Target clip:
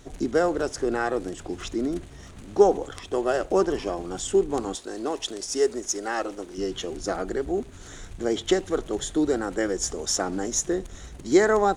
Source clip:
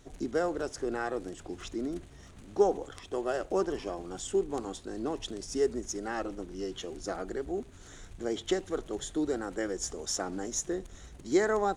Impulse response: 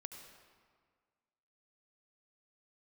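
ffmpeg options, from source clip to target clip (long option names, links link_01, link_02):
-filter_complex "[0:a]asettb=1/sr,asplit=3[link_01][link_02][link_03];[link_01]atrim=end=4.754[link_04];[link_02]atrim=start=4.75:end=6.58,asetpts=PTS-STARTPTS,afade=type=in:duration=0.004:curve=qsin,afade=type=out:start_time=1.826:duration=0.004:curve=qsin,bass=frequency=250:gain=-14,treble=frequency=4000:gain=3[link_05];[link_03]atrim=start=6.576[link_06];[link_04][link_05]acrossfade=duration=0.004:curve1=hsin:curve2=qsin[link_07];[link_07][link_06]acrossfade=duration=0.004:curve1=qsin:curve2=hsin,volume=7.5dB"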